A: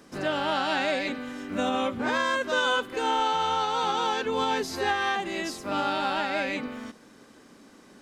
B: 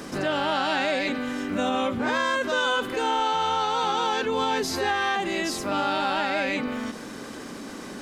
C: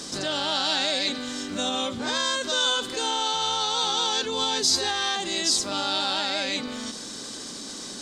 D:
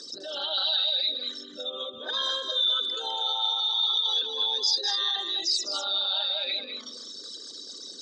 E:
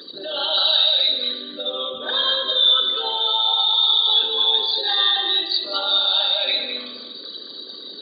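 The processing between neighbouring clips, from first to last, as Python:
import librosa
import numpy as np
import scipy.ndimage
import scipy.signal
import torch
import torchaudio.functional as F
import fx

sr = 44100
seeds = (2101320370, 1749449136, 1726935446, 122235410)

y1 = fx.env_flatten(x, sr, amount_pct=50)
y2 = fx.band_shelf(y1, sr, hz=5500.0, db=15.5, octaves=1.7)
y2 = y2 * 10.0 ** (-4.5 / 20.0)
y3 = fx.envelope_sharpen(y2, sr, power=3.0)
y3 = fx.bandpass_q(y3, sr, hz=2700.0, q=0.72)
y3 = y3 + 10.0 ** (-7.0 / 20.0) * np.pad(y3, (int(203 * sr / 1000.0), 0))[:len(y3)]
y4 = fx.brickwall_lowpass(y3, sr, high_hz=4700.0)
y4 = fx.rev_plate(y4, sr, seeds[0], rt60_s=1.2, hf_ratio=0.8, predelay_ms=0, drr_db=3.5)
y4 = y4 * 10.0 ** (7.5 / 20.0)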